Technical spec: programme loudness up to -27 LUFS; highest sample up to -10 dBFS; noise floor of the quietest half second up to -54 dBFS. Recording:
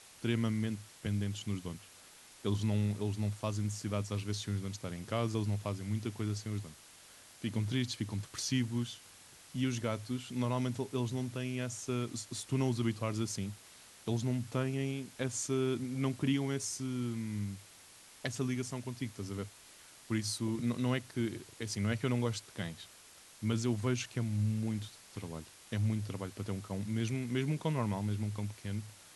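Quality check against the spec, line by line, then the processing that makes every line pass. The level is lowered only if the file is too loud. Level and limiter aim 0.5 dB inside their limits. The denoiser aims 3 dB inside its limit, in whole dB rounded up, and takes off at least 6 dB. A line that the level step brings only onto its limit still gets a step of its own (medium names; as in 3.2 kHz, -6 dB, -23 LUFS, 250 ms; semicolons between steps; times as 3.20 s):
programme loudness -36.0 LUFS: pass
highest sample -18.5 dBFS: pass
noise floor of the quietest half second -57 dBFS: pass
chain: none needed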